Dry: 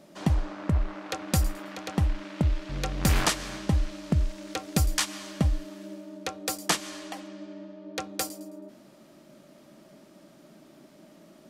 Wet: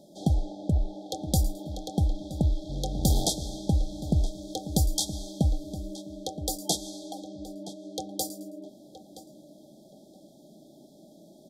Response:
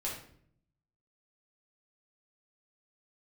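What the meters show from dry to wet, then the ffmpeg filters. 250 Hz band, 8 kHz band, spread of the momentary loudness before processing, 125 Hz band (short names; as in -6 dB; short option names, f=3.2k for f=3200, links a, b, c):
+0.5 dB, 0.0 dB, 16 LU, 0.0 dB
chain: -filter_complex "[0:a]afftfilt=real='re*(1-between(b*sr/4096,870,3200))':imag='im*(1-between(b*sr/4096,870,3200))':win_size=4096:overlap=0.75,asplit=2[a][b];[b]adelay=971,lowpass=f=3.4k:p=1,volume=-13.5dB,asplit=2[c][d];[d]adelay=971,lowpass=f=3.4k:p=1,volume=0.21[e];[c][e]amix=inputs=2:normalize=0[f];[a][f]amix=inputs=2:normalize=0"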